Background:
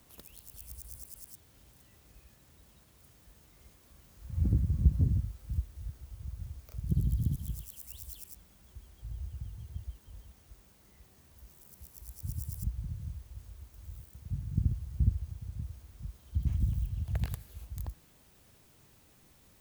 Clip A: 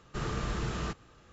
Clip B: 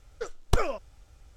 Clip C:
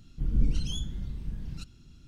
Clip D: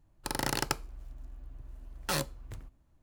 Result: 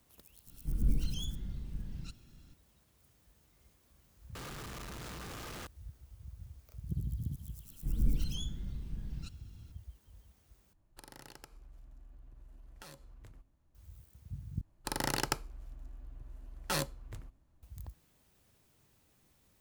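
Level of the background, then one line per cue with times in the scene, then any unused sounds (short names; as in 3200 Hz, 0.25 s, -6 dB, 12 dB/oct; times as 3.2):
background -7.5 dB
0.47 add C -5 dB
4.35 replace with A -9 dB + infinite clipping
7.65 add C -5 dB
10.73 replace with D -5.5 dB + compressor 5:1, threshold -44 dBFS
14.61 replace with D -2 dB
not used: B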